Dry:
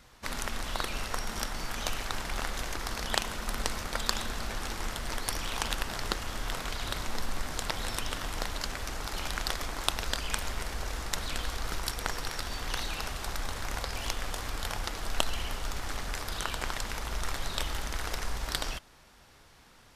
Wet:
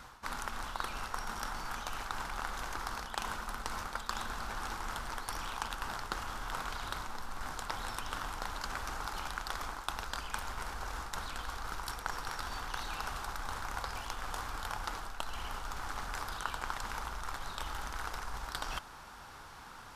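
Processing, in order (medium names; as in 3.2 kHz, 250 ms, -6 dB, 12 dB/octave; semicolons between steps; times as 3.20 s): reverse; compression 6:1, threshold -42 dBFS, peak gain reduction 20 dB; reverse; high-order bell 1.1 kHz +8.5 dB 1.2 oct; trim +3.5 dB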